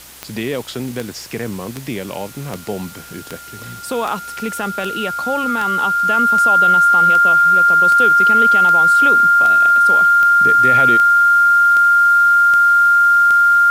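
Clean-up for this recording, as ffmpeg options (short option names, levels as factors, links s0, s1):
-af "adeclick=t=4,bandreject=f=62.7:t=h:w=4,bandreject=f=125.4:t=h:w=4,bandreject=f=188.1:t=h:w=4,bandreject=f=250.8:t=h:w=4,bandreject=f=1400:w=30,afwtdn=0.013"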